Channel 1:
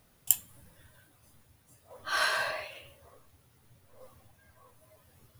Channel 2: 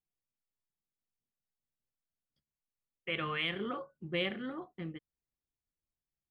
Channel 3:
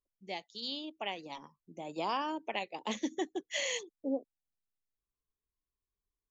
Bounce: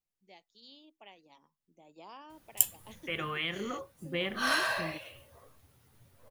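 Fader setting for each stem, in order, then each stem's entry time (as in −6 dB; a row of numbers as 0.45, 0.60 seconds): −0.5, 0.0, −16.0 decibels; 2.30, 0.00, 0.00 seconds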